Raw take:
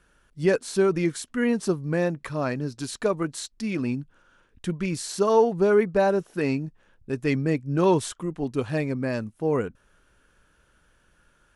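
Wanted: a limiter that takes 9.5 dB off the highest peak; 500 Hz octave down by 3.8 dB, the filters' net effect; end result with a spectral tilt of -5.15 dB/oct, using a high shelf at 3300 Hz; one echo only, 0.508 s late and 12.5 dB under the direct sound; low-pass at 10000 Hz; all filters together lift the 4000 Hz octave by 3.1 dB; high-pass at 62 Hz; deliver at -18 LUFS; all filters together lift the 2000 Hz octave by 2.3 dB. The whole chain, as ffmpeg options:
-af "highpass=62,lowpass=10k,equalizer=f=500:t=o:g=-5,equalizer=f=2k:t=o:g=3.5,highshelf=f=3.3k:g=-7,equalizer=f=4k:t=o:g=8,alimiter=limit=-21dB:level=0:latency=1,aecho=1:1:508:0.237,volume=13dB"

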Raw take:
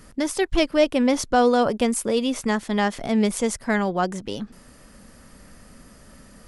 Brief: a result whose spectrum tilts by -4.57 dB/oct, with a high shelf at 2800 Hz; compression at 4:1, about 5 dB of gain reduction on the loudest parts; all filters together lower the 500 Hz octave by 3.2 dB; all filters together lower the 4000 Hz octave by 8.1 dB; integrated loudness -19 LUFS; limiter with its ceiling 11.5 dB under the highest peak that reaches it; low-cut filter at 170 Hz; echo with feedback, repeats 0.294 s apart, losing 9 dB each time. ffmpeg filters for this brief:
-af "highpass=170,equalizer=f=500:t=o:g=-3.5,highshelf=f=2.8k:g=-4,equalizer=f=4k:t=o:g=-8,acompressor=threshold=-22dB:ratio=4,alimiter=level_in=1.5dB:limit=-24dB:level=0:latency=1,volume=-1.5dB,aecho=1:1:294|588|882|1176:0.355|0.124|0.0435|0.0152,volume=14.5dB"

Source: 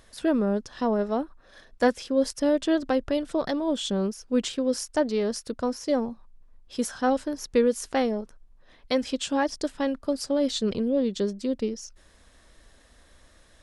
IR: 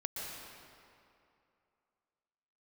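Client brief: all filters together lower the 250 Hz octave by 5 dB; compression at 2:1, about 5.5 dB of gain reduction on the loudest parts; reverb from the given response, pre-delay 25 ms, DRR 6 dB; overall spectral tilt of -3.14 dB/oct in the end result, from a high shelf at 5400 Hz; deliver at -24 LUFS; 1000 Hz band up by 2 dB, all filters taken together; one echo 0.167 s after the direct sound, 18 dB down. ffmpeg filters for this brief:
-filter_complex "[0:a]equalizer=f=250:t=o:g=-6,equalizer=f=1k:t=o:g=3,highshelf=f=5.4k:g=5.5,acompressor=threshold=-27dB:ratio=2,aecho=1:1:167:0.126,asplit=2[a][b];[1:a]atrim=start_sample=2205,adelay=25[c];[b][c]afir=irnorm=-1:irlink=0,volume=-7.5dB[d];[a][d]amix=inputs=2:normalize=0,volume=6dB"

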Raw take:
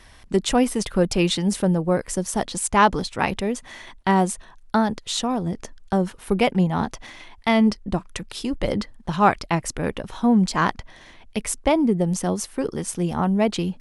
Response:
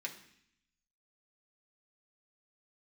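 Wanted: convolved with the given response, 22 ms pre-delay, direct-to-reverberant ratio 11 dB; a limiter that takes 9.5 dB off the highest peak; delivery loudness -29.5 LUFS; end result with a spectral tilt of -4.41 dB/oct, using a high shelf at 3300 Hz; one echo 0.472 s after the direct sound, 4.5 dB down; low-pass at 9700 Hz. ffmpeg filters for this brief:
-filter_complex "[0:a]lowpass=9.7k,highshelf=f=3.3k:g=5.5,alimiter=limit=-13dB:level=0:latency=1,aecho=1:1:472:0.596,asplit=2[a][b];[1:a]atrim=start_sample=2205,adelay=22[c];[b][c]afir=irnorm=-1:irlink=0,volume=-10.5dB[d];[a][d]amix=inputs=2:normalize=0,volume=-6dB"

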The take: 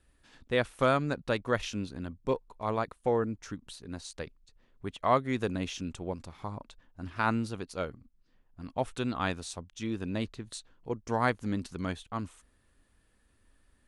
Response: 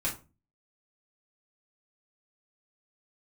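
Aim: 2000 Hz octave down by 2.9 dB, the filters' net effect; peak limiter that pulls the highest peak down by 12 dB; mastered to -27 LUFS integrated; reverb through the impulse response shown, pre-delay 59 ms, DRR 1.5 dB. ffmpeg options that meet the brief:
-filter_complex "[0:a]equalizer=f=2k:t=o:g=-4,alimiter=level_in=1dB:limit=-24dB:level=0:latency=1,volume=-1dB,asplit=2[a][b];[1:a]atrim=start_sample=2205,adelay=59[c];[b][c]afir=irnorm=-1:irlink=0,volume=-7.5dB[d];[a][d]amix=inputs=2:normalize=0,volume=9.5dB"

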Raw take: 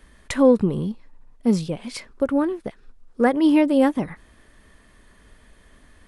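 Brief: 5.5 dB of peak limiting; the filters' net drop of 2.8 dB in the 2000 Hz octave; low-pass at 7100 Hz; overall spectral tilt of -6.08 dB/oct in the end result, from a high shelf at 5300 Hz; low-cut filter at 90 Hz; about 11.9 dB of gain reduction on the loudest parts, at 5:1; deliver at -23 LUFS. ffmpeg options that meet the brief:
-af "highpass=90,lowpass=7.1k,equalizer=f=2k:t=o:g=-4,highshelf=f=5.3k:g=4.5,acompressor=threshold=-24dB:ratio=5,volume=8.5dB,alimiter=limit=-12.5dB:level=0:latency=1"

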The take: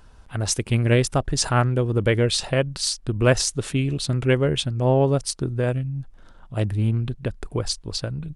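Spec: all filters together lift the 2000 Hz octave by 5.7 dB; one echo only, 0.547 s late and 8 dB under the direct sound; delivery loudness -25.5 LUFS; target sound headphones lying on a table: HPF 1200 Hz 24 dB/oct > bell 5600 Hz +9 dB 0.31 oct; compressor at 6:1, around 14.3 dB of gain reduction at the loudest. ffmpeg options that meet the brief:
-af "equalizer=f=2k:t=o:g=7.5,acompressor=threshold=-28dB:ratio=6,highpass=f=1.2k:w=0.5412,highpass=f=1.2k:w=1.3066,equalizer=f=5.6k:t=o:w=0.31:g=9,aecho=1:1:547:0.398,volume=6.5dB"

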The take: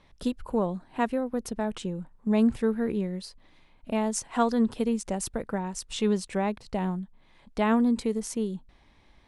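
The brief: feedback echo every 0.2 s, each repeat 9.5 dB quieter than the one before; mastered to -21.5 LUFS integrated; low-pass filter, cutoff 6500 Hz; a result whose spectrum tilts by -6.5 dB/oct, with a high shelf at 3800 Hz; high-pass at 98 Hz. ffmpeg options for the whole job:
-af "highpass=98,lowpass=6.5k,highshelf=f=3.8k:g=-8.5,aecho=1:1:200|400|600|800:0.335|0.111|0.0365|0.012,volume=7dB"

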